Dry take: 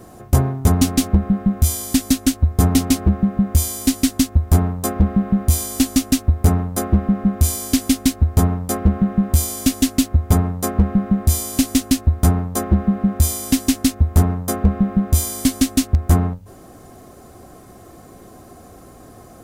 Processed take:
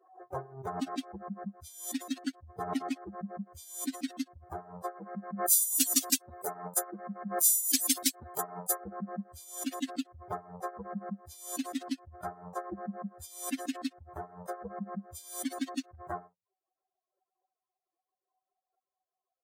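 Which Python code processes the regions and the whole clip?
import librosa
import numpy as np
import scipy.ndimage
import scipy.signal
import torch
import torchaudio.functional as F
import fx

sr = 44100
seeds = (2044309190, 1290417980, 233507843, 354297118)

y = fx.chain(x, sr, fx.highpass(hz=120.0, slope=12),
    fx.high_shelf(hz=4500.0, db=11.5), at=(4.96, 8.79))
y = fx.bin_expand(y, sr, power=3.0)
y = scipy.signal.sosfilt(scipy.signal.butter(2, 420.0, 'highpass', fs=sr, output='sos'), y)
y = fx.pre_swell(y, sr, db_per_s=100.0)
y = y * librosa.db_to_amplitude(-5.5)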